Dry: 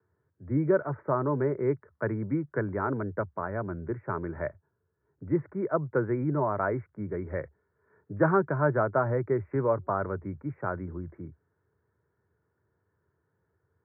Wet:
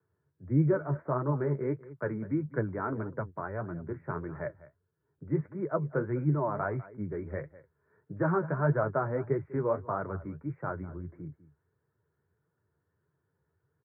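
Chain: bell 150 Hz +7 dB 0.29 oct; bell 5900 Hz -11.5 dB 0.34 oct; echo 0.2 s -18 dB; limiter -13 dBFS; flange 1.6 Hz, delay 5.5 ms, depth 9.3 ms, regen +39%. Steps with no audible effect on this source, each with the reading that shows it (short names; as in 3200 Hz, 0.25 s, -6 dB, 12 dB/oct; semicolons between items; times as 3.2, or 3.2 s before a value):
bell 5900 Hz: input band ends at 1700 Hz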